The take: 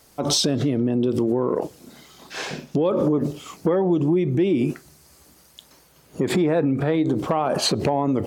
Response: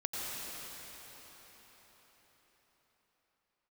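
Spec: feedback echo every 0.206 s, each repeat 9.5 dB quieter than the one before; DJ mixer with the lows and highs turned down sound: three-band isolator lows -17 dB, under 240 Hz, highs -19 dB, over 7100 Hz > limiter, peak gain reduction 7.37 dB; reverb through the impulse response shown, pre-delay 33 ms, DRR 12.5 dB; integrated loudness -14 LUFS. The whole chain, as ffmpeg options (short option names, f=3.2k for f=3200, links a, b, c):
-filter_complex "[0:a]aecho=1:1:206|412|618|824:0.335|0.111|0.0365|0.012,asplit=2[a][b];[1:a]atrim=start_sample=2205,adelay=33[c];[b][c]afir=irnorm=-1:irlink=0,volume=-17dB[d];[a][d]amix=inputs=2:normalize=0,acrossover=split=240 7100:gain=0.141 1 0.112[e][f][g];[e][f][g]amix=inputs=3:normalize=0,volume=12dB,alimiter=limit=-4.5dB:level=0:latency=1"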